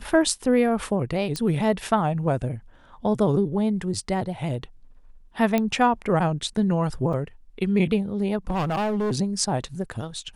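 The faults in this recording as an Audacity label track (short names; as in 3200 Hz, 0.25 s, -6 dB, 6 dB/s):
1.360000	1.360000	pop -14 dBFS
5.580000	5.580000	pop -10 dBFS
7.130000	7.130000	gap 4.5 ms
8.490000	9.130000	clipped -21.5 dBFS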